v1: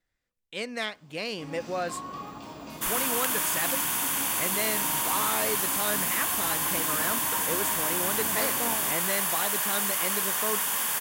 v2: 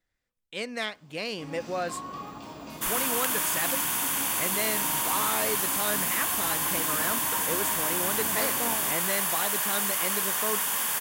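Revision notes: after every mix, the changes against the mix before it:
no change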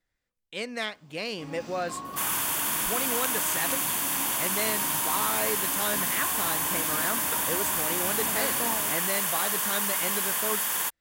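second sound: entry -0.65 s

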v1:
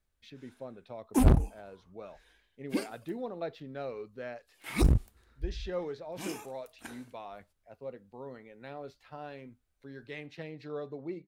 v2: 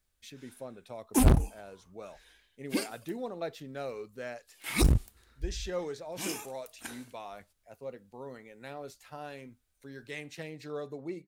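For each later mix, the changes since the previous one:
speech: add resonant high shelf 5.7 kHz +9 dB, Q 1.5; master: add treble shelf 2.3 kHz +8.5 dB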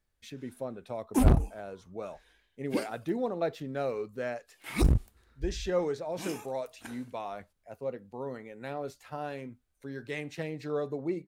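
speech +6.5 dB; master: add treble shelf 2.3 kHz -8.5 dB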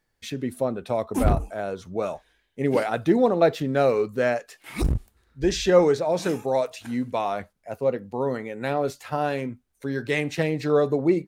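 speech +12.0 dB

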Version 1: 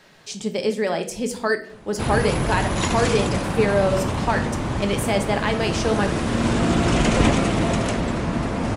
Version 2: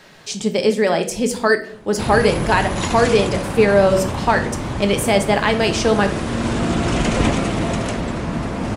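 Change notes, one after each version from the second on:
speech +6.0 dB; second sound: entry +2.35 s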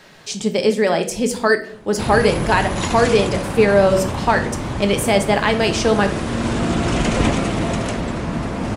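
no change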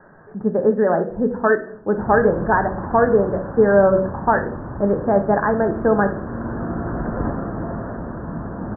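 first sound -6.0 dB; master: add steep low-pass 1.7 kHz 96 dB/octave

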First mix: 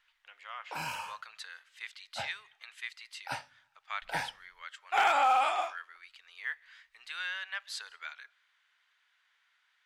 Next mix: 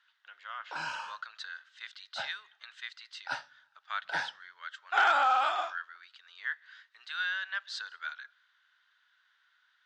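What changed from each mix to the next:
master: add cabinet simulation 220–6400 Hz, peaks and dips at 240 Hz -5 dB, 480 Hz -5 dB, 780 Hz -3 dB, 1.5 kHz +8 dB, 2.3 kHz -8 dB, 3.7 kHz +4 dB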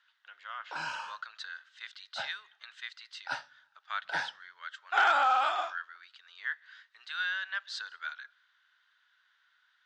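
no change

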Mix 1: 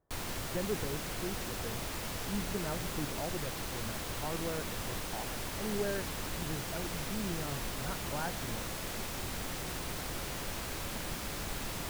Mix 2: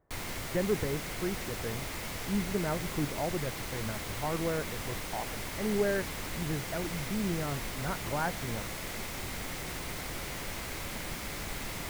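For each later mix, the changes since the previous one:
speech +6.0 dB; master: add peaking EQ 2.1 kHz +6.5 dB 0.27 oct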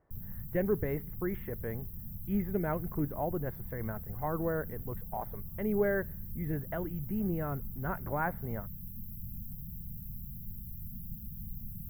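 background: add brick-wall FIR band-stop 230–12000 Hz

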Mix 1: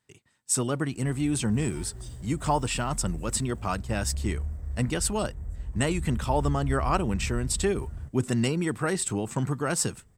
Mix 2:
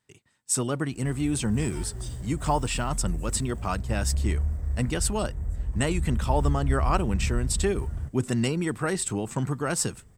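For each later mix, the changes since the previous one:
background +5.5 dB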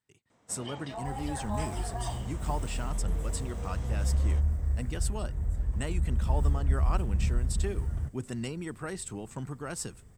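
speech -10.0 dB; first sound: unmuted

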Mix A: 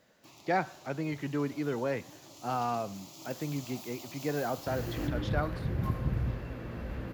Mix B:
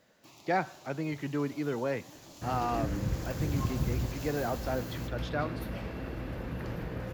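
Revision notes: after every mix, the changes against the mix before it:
second sound: entry -2.25 s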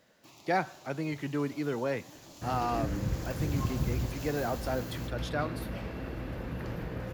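speech: remove distance through air 93 m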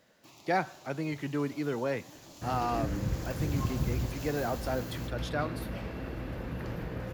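no change

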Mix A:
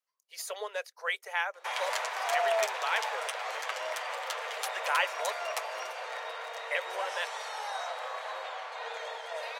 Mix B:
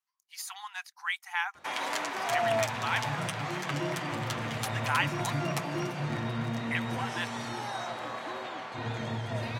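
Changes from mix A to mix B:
speech: add brick-wall FIR high-pass 720 Hz; master: remove steep high-pass 440 Hz 96 dB/octave

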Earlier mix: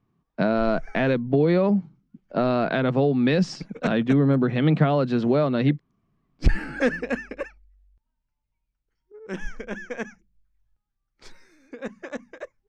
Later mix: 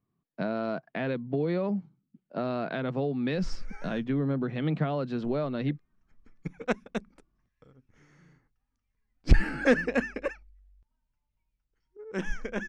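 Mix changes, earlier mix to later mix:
speech -9.0 dB; background: entry +2.85 s

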